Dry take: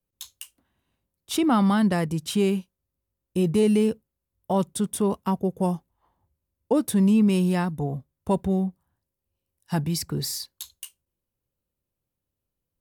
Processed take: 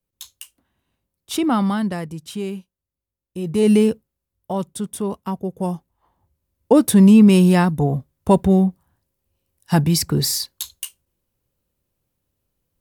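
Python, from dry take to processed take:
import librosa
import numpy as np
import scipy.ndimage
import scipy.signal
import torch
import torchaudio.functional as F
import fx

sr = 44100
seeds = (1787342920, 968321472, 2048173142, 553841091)

y = fx.gain(x, sr, db=fx.line((1.52, 2.0), (2.17, -5.0), (3.41, -5.0), (3.71, 7.0), (4.56, -1.0), (5.44, -1.0), (6.79, 9.0)))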